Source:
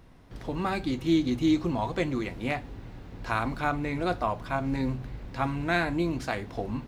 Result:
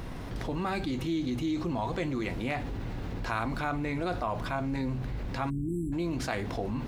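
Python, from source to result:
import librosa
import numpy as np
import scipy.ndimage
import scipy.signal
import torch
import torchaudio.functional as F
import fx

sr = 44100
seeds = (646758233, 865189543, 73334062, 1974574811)

y = fx.spec_erase(x, sr, start_s=5.5, length_s=0.43, low_hz=410.0, high_hz=7400.0)
y = fx.env_flatten(y, sr, amount_pct=70)
y = F.gain(torch.from_numpy(y), -8.5).numpy()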